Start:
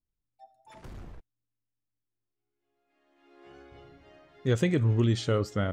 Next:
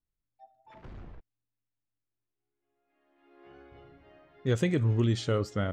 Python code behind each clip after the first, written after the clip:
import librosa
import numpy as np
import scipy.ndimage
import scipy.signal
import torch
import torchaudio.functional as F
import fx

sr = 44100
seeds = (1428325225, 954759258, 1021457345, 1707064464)

y = fx.env_lowpass(x, sr, base_hz=2700.0, full_db=-23.0)
y = y * librosa.db_to_amplitude(-1.5)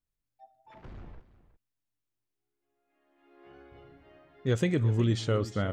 y = x + 10.0 ** (-16.0 / 20.0) * np.pad(x, (int(363 * sr / 1000.0), 0))[:len(x)]